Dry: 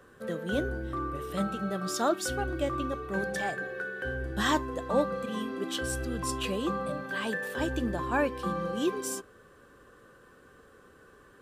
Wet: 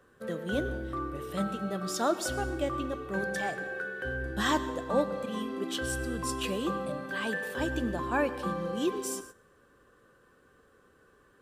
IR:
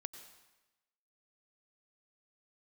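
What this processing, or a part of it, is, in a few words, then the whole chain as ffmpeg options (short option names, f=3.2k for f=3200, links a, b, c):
keyed gated reverb: -filter_complex "[0:a]asettb=1/sr,asplit=3[a][b][c];[a]atrim=end=6.314[d];[b]atrim=start=6.31:end=6.86,asetpts=PTS-STARTPTS,afade=t=in:d=0.004:c=qsin,afade=t=out:st=0.546:d=0.004:c=qsin,highshelf=f=11k:g=5.5[e];[c]atrim=start=6.856[f];[d][e]acrossfade=d=0.004:c1=hsin:c2=qsin[g];[g][f]acrossfade=d=0.004:c1=qsin:c2=hsin,asplit=3[h][i][j];[1:a]atrim=start_sample=2205[k];[i][k]afir=irnorm=-1:irlink=0[l];[j]apad=whole_len=503265[m];[l][m]sidechaingate=range=-16dB:threshold=-49dB:ratio=16:detection=peak,volume=5dB[n];[h][n]amix=inputs=2:normalize=0,volume=-7.5dB"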